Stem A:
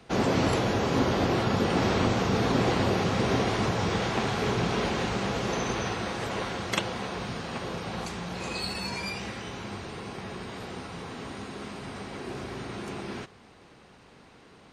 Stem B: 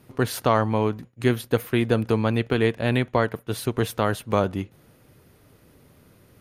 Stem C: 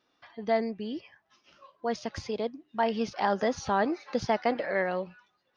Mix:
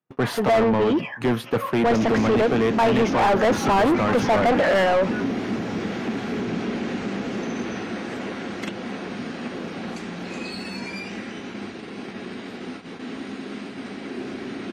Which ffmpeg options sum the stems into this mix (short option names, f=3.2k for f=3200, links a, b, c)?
-filter_complex "[0:a]adynamicequalizer=threshold=0.00501:dfrequency=3700:dqfactor=1.2:tfrequency=3700:tqfactor=1.2:attack=5:release=100:ratio=0.375:range=2:mode=cutabove:tftype=bell,acrossover=split=260[a][b];[b]acompressor=threshold=-33dB:ratio=2.5[c];[a][c]amix=inputs=2:normalize=0,equalizer=f=125:t=o:w=1:g=-4,equalizer=f=250:t=o:w=1:g=11,equalizer=f=500:t=o:w=1:g=-4,equalizer=f=1k:t=o:w=1:g=-10,adelay=1900,volume=-15dB[d];[1:a]highpass=f=140:w=0.5412,highpass=f=140:w=1.3066,bass=f=250:g=14,treble=f=4k:g=-1,volume=-14.5dB[e];[2:a]equalizer=f=4.5k:w=1.8:g=-14,volume=2dB[f];[d][e][f]amix=inputs=3:normalize=0,asplit=2[g][h];[h]highpass=f=720:p=1,volume=32dB,asoftclip=type=tanh:threshold=-10.5dB[i];[g][i]amix=inputs=2:normalize=0,lowpass=f=1.6k:p=1,volume=-6dB,agate=range=-42dB:threshold=-35dB:ratio=16:detection=peak"